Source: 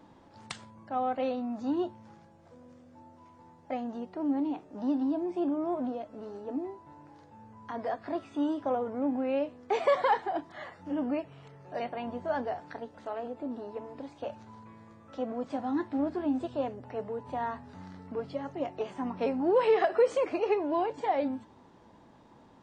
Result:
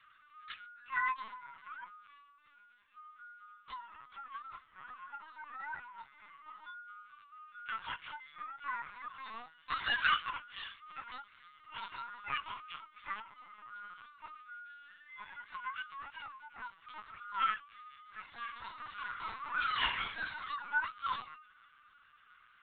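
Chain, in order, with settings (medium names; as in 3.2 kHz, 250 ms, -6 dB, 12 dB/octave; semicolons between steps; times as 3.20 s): frequency axis rescaled in octaves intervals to 127%; steep high-pass 1.2 kHz 36 dB/octave; 18.21–20.41 s: reverse bouncing-ball echo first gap 30 ms, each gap 1.25×, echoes 5; LPC vocoder at 8 kHz pitch kept; trim +6 dB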